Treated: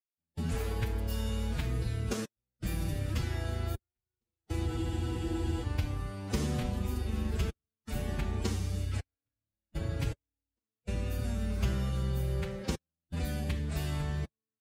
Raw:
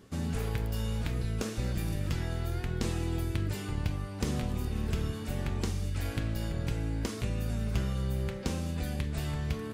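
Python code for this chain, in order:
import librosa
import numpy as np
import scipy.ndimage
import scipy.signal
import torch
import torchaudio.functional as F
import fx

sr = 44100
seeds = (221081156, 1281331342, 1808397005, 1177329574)

y = fx.step_gate(x, sr, bpm=60, pattern='.xxxxx.xxx..x.', floor_db=-60.0, edge_ms=4.5)
y = fx.stretch_vocoder(y, sr, factor=1.5)
y = fx.spec_freeze(y, sr, seeds[0], at_s=4.68, hold_s=0.94)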